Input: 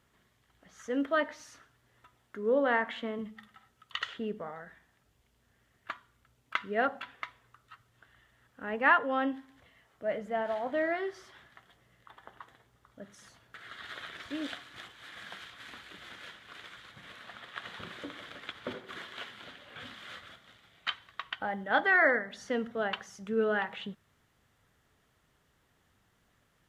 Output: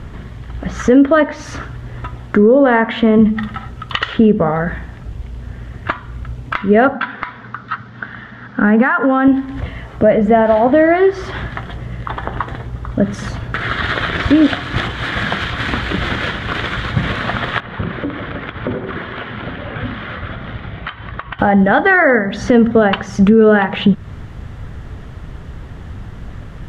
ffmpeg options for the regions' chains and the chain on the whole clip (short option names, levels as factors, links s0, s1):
-filter_complex "[0:a]asettb=1/sr,asplit=3[s0][s1][s2];[s0]atrim=end=6.934[s3];[s1]atrim=start=6.93:end=9.28,asetpts=PTS-STARTPTS,afade=t=in:d=0.004:c=qsin,afade=t=out:st=2.346:d=0.004:c=qsin,acompressor=threshold=0.0224:ratio=6:attack=3.2:release=140:knee=1:detection=peak,highpass=200,equalizer=f=210:t=q:w=4:g=8,equalizer=f=350:t=q:w=4:g=-6,equalizer=f=570:t=q:w=4:g=-5,equalizer=f=1500:t=q:w=4:g=7,equalizer=f=2700:t=q:w=4:g=-5,lowpass=f=5200:w=0.5412,lowpass=f=5200:w=1.3066[s4];[s2]atrim=start=9.276[s5];[s3][s4]acrossfade=d=0.004:c1=hsin:c2=qsin[s6];[s6][s5]acrossfade=d=0.004:c1=qsin:c2=hsin,asettb=1/sr,asplit=3[s7][s8][s9];[s7]atrim=end=17.604[s10];[s8]atrim=start=17.6:end=21.39,asetpts=PTS-STARTPTS,afade=t=in:d=0.004:c=qsin,afade=t=out:st=3.786:d=0.004:c=qsin,lowpass=2600,acompressor=threshold=0.00141:ratio=3:attack=3.2:release=140:knee=1:detection=peak[s11];[s9]atrim=start=21.386[s12];[s10][s11]acrossfade=d=0.004:c1=hsin:c2=qsin[s13];[s13][s12]acrossfade=d=0.004:c1=qsin:c2=hsin,acompressor=threshold=0.00501:ratio=2.5,aemphasis=mode=reproduction:type=riaa,alimiter=level_in=37.6:limit=0.891:release=50:level=0:latency=1,volume=0.891"